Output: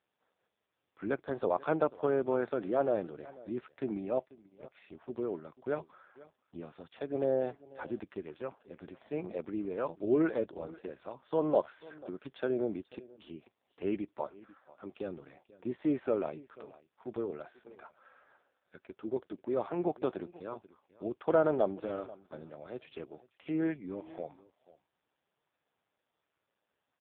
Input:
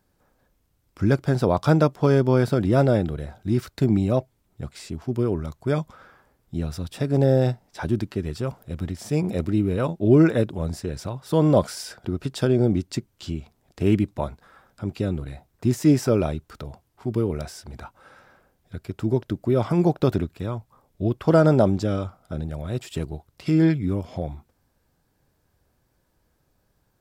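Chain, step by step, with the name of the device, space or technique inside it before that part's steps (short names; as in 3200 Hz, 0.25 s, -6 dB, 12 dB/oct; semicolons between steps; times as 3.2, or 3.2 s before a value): satellite phone (BPF 390–3300 Hz; echo 0.489 s -20.5 dB; gain -6.5 dB; AMR-NB 5.15 kbps 8000 Hz)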